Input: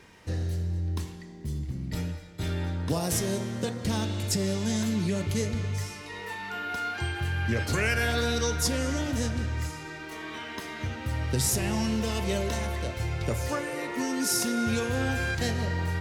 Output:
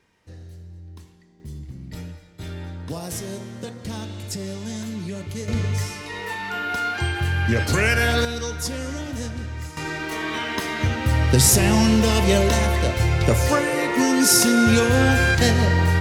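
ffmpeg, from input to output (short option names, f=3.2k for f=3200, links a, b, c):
-af "asetnsamples=n=441:p=0,asendcmd='1.4 volume volume -3dB;5.48 volume volume 7dB;8.25 volume volume -1dB;9.77 volume volume 11dB',volume=-11dB"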